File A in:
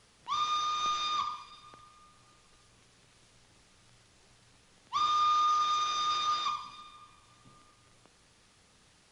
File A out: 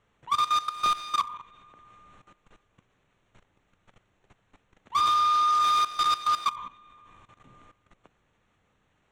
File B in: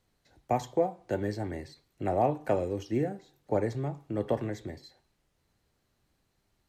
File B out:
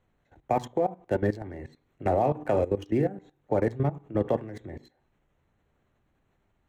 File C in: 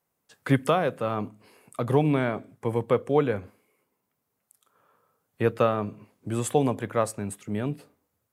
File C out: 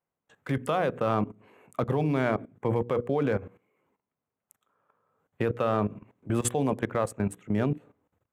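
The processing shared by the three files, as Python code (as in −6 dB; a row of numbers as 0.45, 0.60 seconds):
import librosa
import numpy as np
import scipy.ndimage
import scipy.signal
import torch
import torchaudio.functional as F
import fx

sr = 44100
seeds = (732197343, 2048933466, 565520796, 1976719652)

y = fx.wiener(x, sr, points=9)
y = fx.hum_notches(y, sr, base_hz=60, count=8)
y = fx.level_steps(y, sr, step_db=16)
y = y * 10.0 ** (-30 / 20.0) / np.sqrt(np.mean(np.square(y)))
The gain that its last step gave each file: +10.0, +9.0, +6.5 decibels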